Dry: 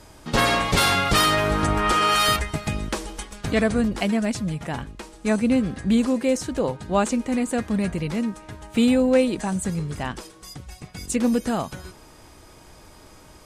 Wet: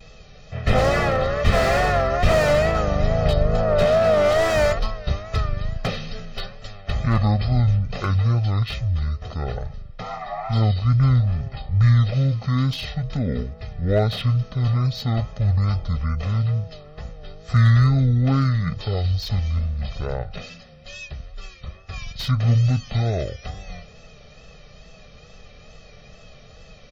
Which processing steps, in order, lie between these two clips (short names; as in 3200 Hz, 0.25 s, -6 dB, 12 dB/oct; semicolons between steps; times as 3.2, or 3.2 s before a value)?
spectral repair 5.03–5.28, 1200–5400 Hz after; speed mistake 15 ips tape played at 7.5 ips; vibrato 2.3 Hz 95 cents; bell 990 Hz -4.5 dB 0.52 oct; comb 1.6 ms, depth 78%; slew limiter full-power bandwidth 160 Hz